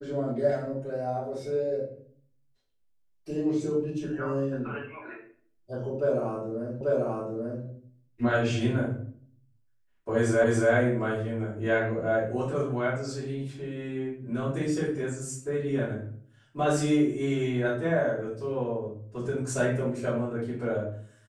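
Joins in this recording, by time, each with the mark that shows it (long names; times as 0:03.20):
0:06.81: the same again, the last 0.84 s
0:10.44: the same again, the last 0.28 s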